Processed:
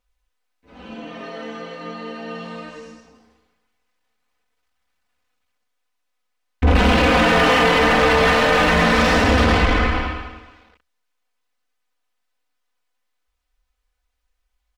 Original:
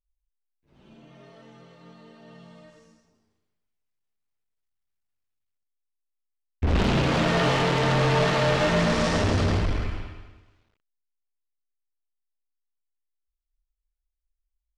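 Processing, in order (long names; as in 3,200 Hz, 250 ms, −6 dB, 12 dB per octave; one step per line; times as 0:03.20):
dynamic equaliser 2,300 Hz, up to +4 dB, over −39 dBFS, Q 0.81
mid-hump overdrive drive 20 dB, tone 1,700 Hz, clips at −13.5 dBFS
parametric band 68 Hz +14.5 dB 0.4 octaves
comb filter 4 ms, depth 83%
in parallel at +2 dB: brickwall limiter −18 dBFS, peak gain reduction 9 dB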